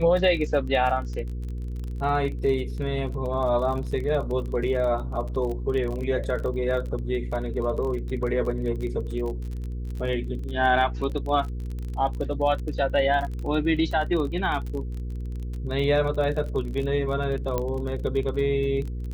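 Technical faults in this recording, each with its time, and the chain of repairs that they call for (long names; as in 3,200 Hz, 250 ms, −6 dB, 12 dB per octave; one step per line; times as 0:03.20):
surface crackle 29 per second −31 dBFS
mains hum 60 Hz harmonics 8 −31 dBFS
0:17.58: click −13 dBFS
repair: click removal
hum removal 60 Hz, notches 8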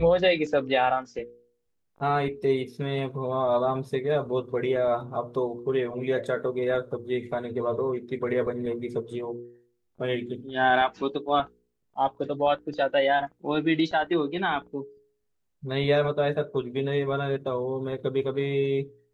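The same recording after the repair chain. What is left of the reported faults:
none of them is left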